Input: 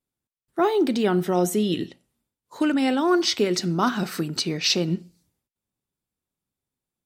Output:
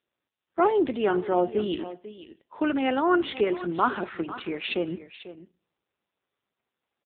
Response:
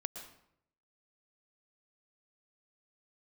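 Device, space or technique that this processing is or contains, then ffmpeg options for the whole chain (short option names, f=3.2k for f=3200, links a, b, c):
satellite phone: -filter_complex "[0:a]asettb=1/sr,asplit=3[a][b][c];[a]atrim=end=0.894[d];[b]atrim=start=0.89:end=1.68,asetpts=PTS-STARTPTS,afade=t=in:d=0.004:c=qsin,afade=t=out:st=0.786:d=0.004:c=qsin,acrossover=split=3100[e][f];[f]acompressor=threshold=-36dB:ratio=4:attack=1:release=60[g];[e][g]amix=inputs=2:normalize=0[h];[c]atrim=start=1.676[i];[d][h]acrossfade=d=0.004:c1=hsin:c2=qsin[j];[j][i]acrossfade=d=0.004:c1=qsin:c2=hsin,highpass=370,lowpass=3.2k,aecho=1:1:494:0.188,volume=1.5dB" -ar 8000 -c:a libopencore_amrnb -b:a 5900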